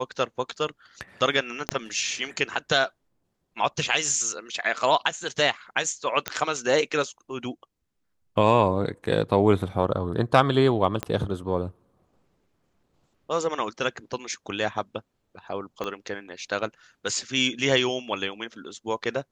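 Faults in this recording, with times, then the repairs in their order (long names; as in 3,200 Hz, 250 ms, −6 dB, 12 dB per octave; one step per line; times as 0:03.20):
0:01.69: click −8 dBFS
0:06.28: click −9 dBFS
0:11.03: click −13 dBFS
0:15.84: click −18 dBFS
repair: click removal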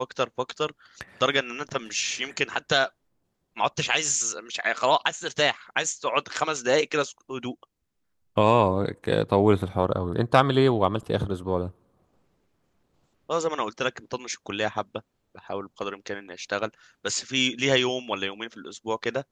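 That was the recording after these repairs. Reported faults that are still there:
0:01.69: click
0:11.03: click
0:15.84: click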